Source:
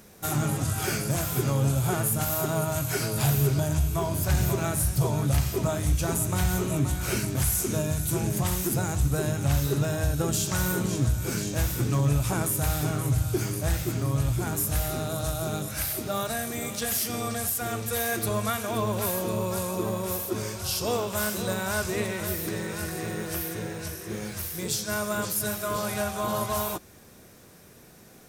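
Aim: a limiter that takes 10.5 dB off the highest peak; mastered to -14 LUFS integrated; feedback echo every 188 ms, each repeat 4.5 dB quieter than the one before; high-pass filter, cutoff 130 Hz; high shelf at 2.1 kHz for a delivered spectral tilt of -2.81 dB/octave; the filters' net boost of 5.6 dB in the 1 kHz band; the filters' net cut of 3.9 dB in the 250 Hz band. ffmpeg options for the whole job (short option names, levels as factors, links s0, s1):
-af "highpass=130,equalizer=f=250:t=o:g=-5.5,equalizer=f=1000:t=o:g=6,highshelf=f=2100:g=6,alimiter=limit=0.119:level=0:latency=1,aecho=1:1:188|376|564|752|940|1128|1316|1504|1692:0.596|0.357|0.214|0.129|0.0772|0.0463|0.0278|0.0167|0.01,volume=3.98"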